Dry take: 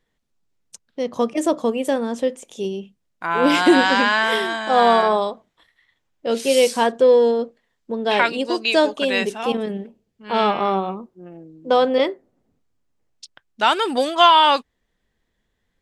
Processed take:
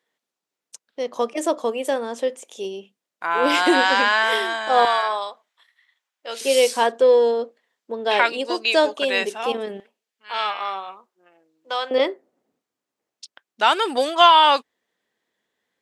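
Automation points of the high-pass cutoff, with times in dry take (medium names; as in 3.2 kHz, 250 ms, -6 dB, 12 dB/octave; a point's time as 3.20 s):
410 Hz
from 4.85 s 1 kHz
from 6.41 s 380 Hz
from 9.80 s 1.2 kHz
from 11.91 s 330 Hz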